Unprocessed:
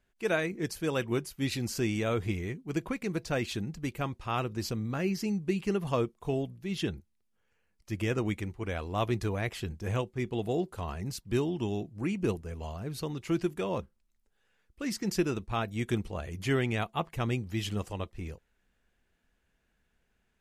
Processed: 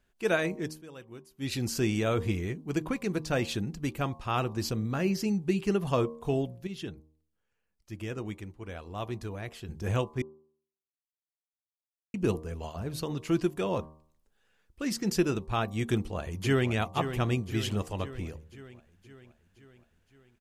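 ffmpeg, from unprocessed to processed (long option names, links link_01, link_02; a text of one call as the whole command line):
ffmpeg -i in.wav -filter_complex "[0:a]asplit=2[link_01][link_02];[link_02]afade=type=in:start_time=15.92:duration=0.01,afade=type=out:start_time=16.71:duration=0.01,aecho=0:1:520|1040|1560|2080|2600|3120|3640:0.334965|0.200979|0.120588|0.0723525|0.0434115|0.0260469|0.0156281[link_03];[link_01][link_03]amix=inputs=2:normalize=0,asplit=7[link_04][link_05][link_06][link_07][link_08][link_09][link_10];[link_04]atrim=end=0.79,asetpts=PTS-STARTPTS,afade=type=out:start_time=0.47:duration=0.32:curve=qsin:silence=0.11885[link_11];[link_05]atrim=start=0.79:end=1.35,asetpts=PTS-STARTPTS,volume=-18.5dB[link_12];[link_06]atrim=start=1.35:end=6.672,asetpts=PTS-STARTPTS,afade=type=in:duration=0.32:curve=qsin:silence=0.11885[link_13];[link_07]atrim=start=6.668:end=9.692,asetpts=PTS-STARTPTS,volume=-8.5dB[link_14];[link_08]atrim=start=9.688:end=10.22,asetpts=PTS-STARTPTS,afade=type=out:start_time=0.528:duration=0.004:curve=hsin[link_15];[link_09]atrim=start=10.22:end=12.14,asetpts=PTS-STARTPTS,volume=0[link_16];[link_10]atrim=start=12.14,asetpts=PTS-STARTPTS,afade=type=in:duration=0.004:curve=hsin[link_17];[link_11][link_12][link_13]concat=n=3:v=0:a=1[link_18];[link_18][link_14]acrossfade=duration=0.004:curve1=hsin:curve2=hsin[link_19];[link_15][link_16][link_17]concat=n=3:v=0:a=1[link_20];[link_19][link_20]acrossfade=duration=0.004:curve1=hsin:curve2=hsin,equalizer=frequency=2100:width_type=o:width=0.31:gain=-3.5,bandreject=frequency=77.54:width_type=h:width=4,bandreject=frequency=155.08:width_type=h:width=4,bandreject=frequency=232.62:width_type=h:width=4,bandreject=frequency=310.16:width_type=h:width=4,bandreject=frequency=387.7:width_type=h:width=4,bandreject=frequency=465.24:width_type=h:width=4,bandreject=frequency=542.78:width_type=h:width=4,bandreject=frequency=620.32:width_type=h:width=4,bandreject=frequency=697.86:width_type=h:width=4,bandreject=frequency=775.4:width_type=h:width=4,bandreject=frequency=852.94:width_type=h:width=4,bandreject=frequency=930.48:width_type=h:width=4,bandreject=frequency=1008.02:width_type=h:width=4,bandreject=frequency=1085.56:width_type=h:width=4,bandreject=frequency=1163.1:width_type=h:width=4,volume=2.5dB" out.wav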